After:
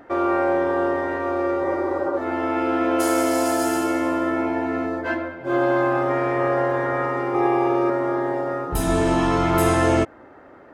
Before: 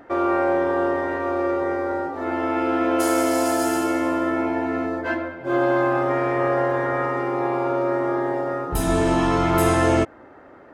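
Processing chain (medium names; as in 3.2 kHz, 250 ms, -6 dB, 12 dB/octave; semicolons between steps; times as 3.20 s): 1.67–2.15 s: spectral replace 280–1600 Hz before; 7.34–7.90 s: comb 2.5 ms, depth 95%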